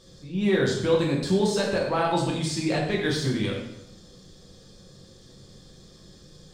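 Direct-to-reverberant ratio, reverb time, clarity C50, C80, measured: -3.0 dB, 0.85 s, 3.0 dB, 6.0 dB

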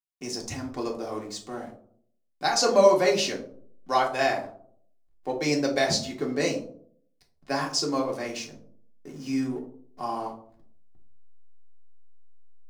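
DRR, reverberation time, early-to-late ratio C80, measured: -1.5 dB, 0.60 s, 13.5 dB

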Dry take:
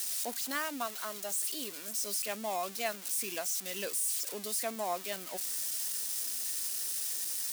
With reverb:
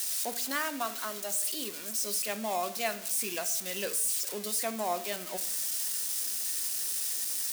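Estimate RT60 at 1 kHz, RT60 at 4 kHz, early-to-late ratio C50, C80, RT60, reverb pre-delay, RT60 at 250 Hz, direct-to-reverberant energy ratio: 0.65 s, 0.50 s, 14.0 dB, 17.0 dB, 0.70 s, 5 ms, 1.0 s, 9.5 dB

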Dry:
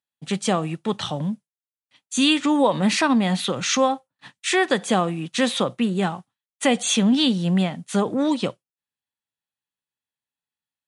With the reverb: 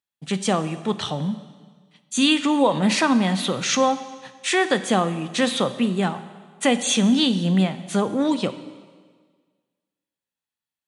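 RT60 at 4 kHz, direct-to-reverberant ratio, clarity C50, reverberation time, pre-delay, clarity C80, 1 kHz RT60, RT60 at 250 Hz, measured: 1.5 s, 11.5 dB, 13.0 dB, 1.6 s, 6 ms, 14.0 dB, 1.6 s, 1.6 s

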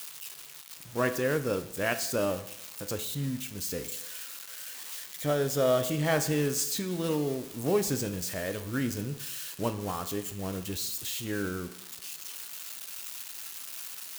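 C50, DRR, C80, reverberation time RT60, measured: 12.0 dB, 8.0 dB, 14.5 dB, 0.80 s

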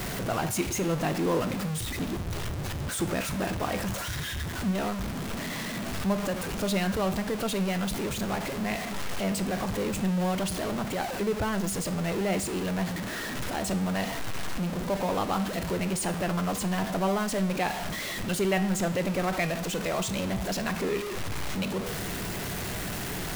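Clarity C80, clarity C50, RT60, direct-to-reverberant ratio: 17.0 dB, 14.5 dB, 0.60 s, 9.5 dB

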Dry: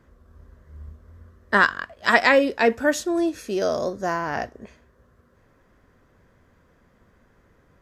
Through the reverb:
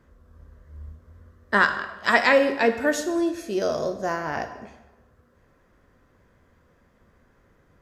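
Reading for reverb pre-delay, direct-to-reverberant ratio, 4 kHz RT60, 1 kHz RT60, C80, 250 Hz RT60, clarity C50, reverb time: 13 ms, 7.5 dB, 0.85 s, 1.1 s, 12.0 dB, 1.0 s, 10.0 dB, 1.1 s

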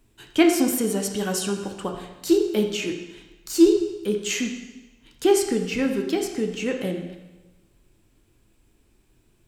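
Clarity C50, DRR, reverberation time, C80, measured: 6.0 dB, 3.5 dB, 1.1 s, 8.0 dB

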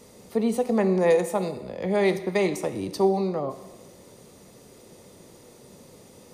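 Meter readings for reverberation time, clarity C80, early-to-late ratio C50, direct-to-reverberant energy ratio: 1.1 s, 14.0 dB, 12.5 dB, 10.0 dB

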